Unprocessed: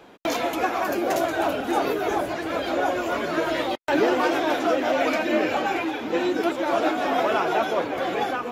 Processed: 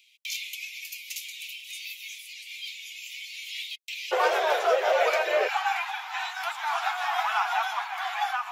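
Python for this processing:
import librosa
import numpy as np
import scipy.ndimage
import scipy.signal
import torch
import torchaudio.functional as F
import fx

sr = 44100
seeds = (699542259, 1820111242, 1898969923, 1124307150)

y = fx.steep_highpass(x, sr, hz=fx.steps((0.0, 2200.0), (4.11, 400.0), (5.47, 750.0)), slope=96)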